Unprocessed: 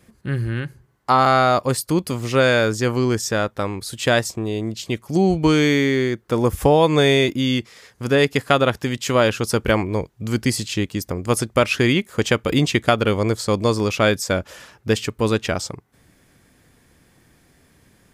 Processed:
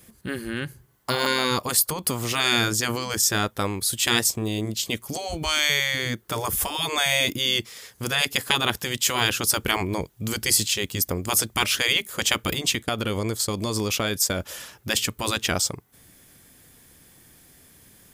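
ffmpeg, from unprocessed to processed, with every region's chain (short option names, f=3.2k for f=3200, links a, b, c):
-filter_complex "[0:a]asettb=1/sr,asplit=3[a][b][c];[a]atrim=end=1.794[d];[b]atrim=start=1.79:end=2.32,asetpts=PTS-STARTPTS,afade=t=in:d=0.004:c=qsin,afade=t=out:st=0.526:d=0.004:c=qsin,equalizer=f=910:t=o:w=1.7:g=8,acompressor=threshold=-23dB:ratio=2:attack=3.2:release=140:knee=1:detection=peak[e];[c]atrim=start=2.316[f];[d][e]acrossfade=d=0.004:c1=hsin:c2=qsin[g];[g][f]acrossfade=d=0.004:c1=qsin:c2=hsin,asettb=1/sr,asplit=3[h][i][j];[h]atrim=end=12.534[k];[i]atrim=start=12.53:end=14.4,asetpts=PTS-STARTPTS,afade=t=in:d=0.004:c=qsin,afade=t=out:st=1.866:d=0.004:c=qsin,agate=range=-33dB:threshold=-27dB:ratio=3:release=100:detection=peak,acompressor=threshold=-19dB:ratio=6:attack=3.2:release=140:knee=1:detection=peak[l];[j]atrim=start=14.396[m];[k][l]acrossfade=d=0.004:c1=hsin:c2=qsin[n];[n][m]acrossfade=d=0.004:c1=qsin:c2=hsin,aemphasis=mode=production:type=50fm,afftfilt=real='re*lt(hypot(re,im),0.501)':imag='im*lt(hypot(re,im),0.501)':win_size=1024:overlap=0.75,equalizer=f=3.3k:t=o:w=0.37:g=3.5,volume=-1dB"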